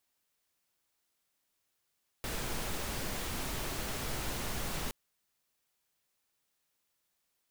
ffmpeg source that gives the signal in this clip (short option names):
-f lavfi -i "anoisesrc=c=pink:a=0.0767:d=2.67:r=44100:seed=1"